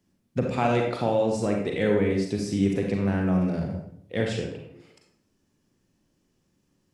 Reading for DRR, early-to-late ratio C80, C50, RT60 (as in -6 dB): 0.5 dB, 6.5 dB, 3.0 dB, 0.70 s